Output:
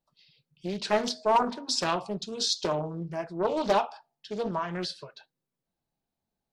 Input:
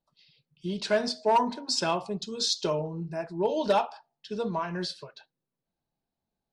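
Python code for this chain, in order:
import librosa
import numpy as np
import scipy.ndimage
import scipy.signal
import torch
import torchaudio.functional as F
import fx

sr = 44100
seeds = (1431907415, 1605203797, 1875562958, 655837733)

y = fx.doppler_dist(x, sr, depth_ms=0.45)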